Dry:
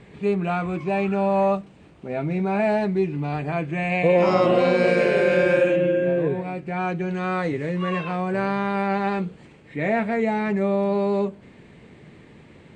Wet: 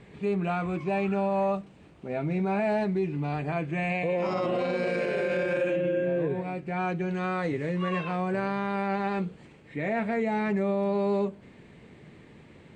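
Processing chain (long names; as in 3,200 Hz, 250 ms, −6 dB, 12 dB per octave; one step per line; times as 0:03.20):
brickwall limiter −16.5 dBFS, peak gain reduction 8.5 dB
level −3.5 dB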